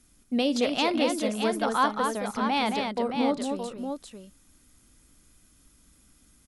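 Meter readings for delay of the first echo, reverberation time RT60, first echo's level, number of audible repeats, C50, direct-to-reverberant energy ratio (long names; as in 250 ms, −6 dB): 55 ms, no reverb audible, −19.0 dB, 3, no reverb audible, no reverb audible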